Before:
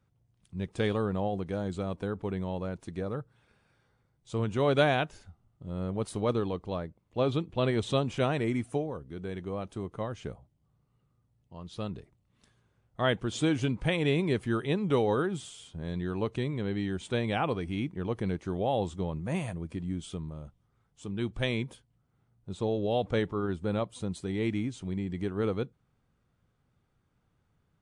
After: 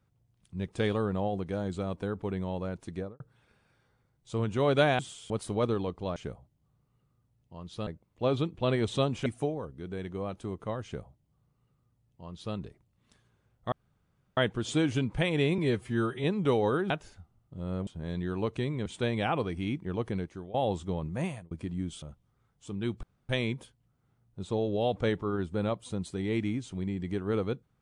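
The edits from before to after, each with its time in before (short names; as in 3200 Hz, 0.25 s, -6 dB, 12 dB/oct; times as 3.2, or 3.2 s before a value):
2.95–3.2 studio fade out
4.99–5.96 swap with 15.35–15.66
8.21–8.58 cut
10.16–11.87 copy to 6.82
13.04 insert room tone 0.65 s
14.25–14.69 stretch 1.5×
16.65–16.97 cut
18.17–18.65 fade out, to -18 dB
19.32–19.62 fade out
20.13–20.38 cut
21.39 insert room tone 0.26 s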